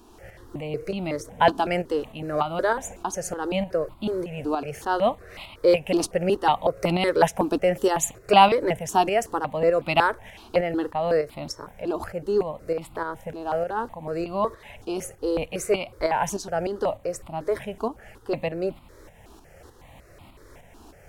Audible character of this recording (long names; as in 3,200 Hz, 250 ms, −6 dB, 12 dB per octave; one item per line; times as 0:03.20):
tremolo saw up 3.3 Hz, depth 55%
notches that jump at a steady rate 5.4 Hz 540–1,700 Hz